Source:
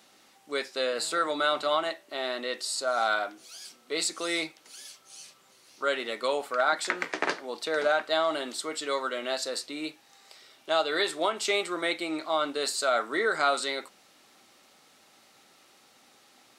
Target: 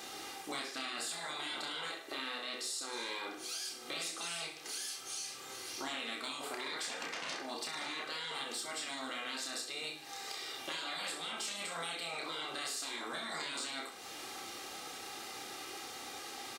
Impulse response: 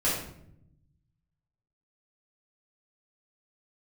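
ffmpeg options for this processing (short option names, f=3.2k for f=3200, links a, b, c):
-af "aecho=1:1:2.5:0.52,afftfilt=real='re*lt(hypot(re,im),0.0631)':imag='im*lt(hypot(re,im),0.0631)':win_size=1024:overlap=0.75,acompressor=threshold=-51dB:ratio=6,asoftclip=type=tanh:threshold=-38.5dB,aecho=1:1:30|64.5|104.2|149.8|202.3:0.631|0.398|0.251|0.158|0.1,volume=10.5dB"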